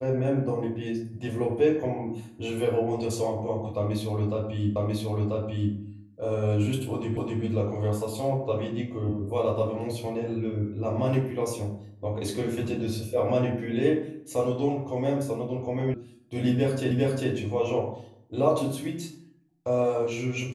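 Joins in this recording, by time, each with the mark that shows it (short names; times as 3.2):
4.76 repeat of the last 0.99 s
7.17 repeat of the last 0.26 s
15.94 sound cut off
16.91 repeat of the last 0.4 s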